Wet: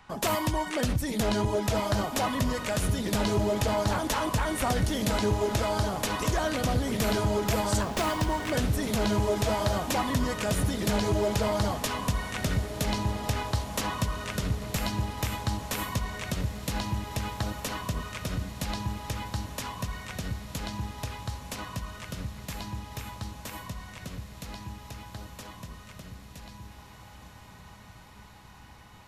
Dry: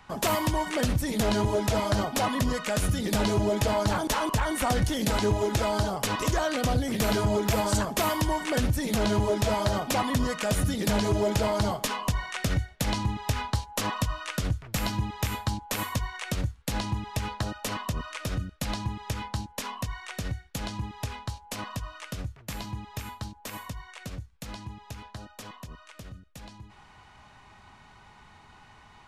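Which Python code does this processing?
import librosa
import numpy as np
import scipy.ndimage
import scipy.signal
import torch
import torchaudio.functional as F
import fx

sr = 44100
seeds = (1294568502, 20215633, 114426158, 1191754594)

y = fx.echo_diffused(x, sr, ms=1822, feedback_pct=62, wet_db=-11.5)
y = fx.running_max(y, sr, window=3, at=(7.81, 8.52))
y = y * librosa.db_to_amplitude(-1.5)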